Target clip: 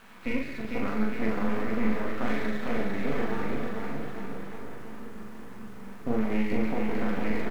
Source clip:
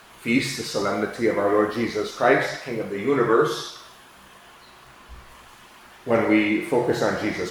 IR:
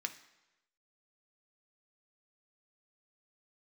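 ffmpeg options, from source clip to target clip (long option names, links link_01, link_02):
-filter_complex "[0:a]asettb=1/sr,asplit=3[link_01][link_02][link_03];[link_01]atrim=end=3.444[link_04];[link_02]atrim=start=3.44:end=6.18,asetpts=PTS-STARTPTS,afade=type=in:duration=0.004:curve=qsin,afade=type=out:start_time=2.736:duration=0.004:curve=qsin,tiltshelf=frequency=790:gain=8.5[link_05];[link_03]atrim=start=6.176[link_06];[link_04][link_05]acrossfade=duration=0.004:curve1=hsin:curve2=qsin[link_07];[link_07][link_06]acrossfade=duration=0.004:curve1=qsin:curve2=hsin[link_08];[1:a]atrim=start_sample=2205,afade=type=out:start_time=0.19:duration=0.01,atrim=end_sample=8820[link_09];[link_08][link_09]afir=irnorm=-1:irlink=0,acompressor=threshold=-32dB:ratio=4,lowpass=frequency=2400:width=0.5412,lowpass=frequency=2400:width=1.3066,equalizer=frequency=210:width=1.6:gain=13.5,aeval=exprs='max(val(0),0)':channel_layout=same,asplit=2[link_10][link_11];[link_11]adelay=41,volume=-3dB[link_12];[link_10][link_12]amix=inputs=2:normalize=0,acrusher=bits=7:dc=4:mix=0:aa=0.000001,aecho=1:1:450|855|1220|1548|1843:0.631|0.398|0.251|0.158|0.1"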